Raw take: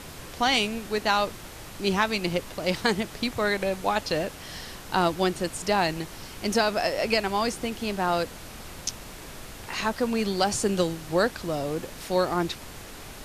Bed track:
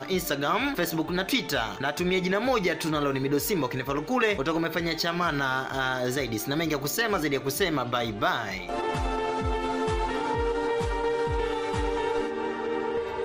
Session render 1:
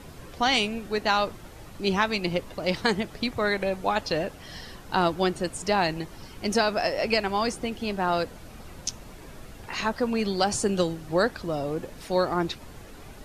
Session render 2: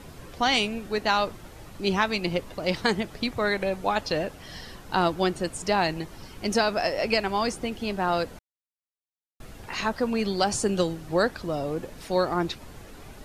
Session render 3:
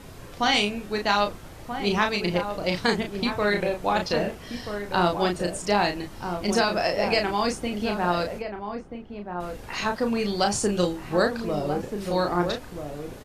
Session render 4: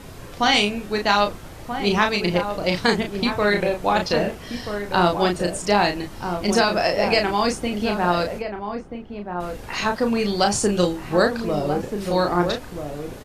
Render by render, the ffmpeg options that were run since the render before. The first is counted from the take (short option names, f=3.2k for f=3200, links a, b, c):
-af "afftdn=nr=9:nf=-42"
-filter_complex "[0:a]asplit=3[a][b][c];[a]atrim=end=8.39,asetpts=PTS-STARTPTS,afade=t=out:st=8.386:d=0.004:c=hsin[d];[b]atrim=start=8.39:end=9.4,asetpts=PTS-STARTPTS,volume=0[e];[c]atrim=start=9.4,asetpts=PTS-STARTPTS,afade=t=in:d=0.004:c=hsin[f];[d][e][f]concat=n=3:v=0:a=1"
-filter_complex "[0:a]asplit=2[a][b];[b]adelay=34,volume=-5dB[c];[a][c]amix=inputs=2:normalize=0,asplit=2[d][e];[e]adelay=1283,volume=-7dB,highshelf=f=4k:g=-28.9[f];[d][f]amix=inputs=2:normalize=0"
-af "volume=4dB"